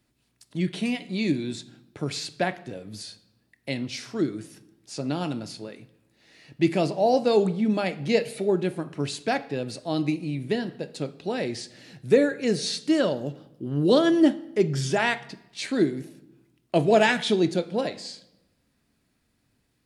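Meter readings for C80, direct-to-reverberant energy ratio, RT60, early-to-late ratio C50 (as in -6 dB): 21.0 dB, 11.0 dB, 0.95 s, 18.5 dB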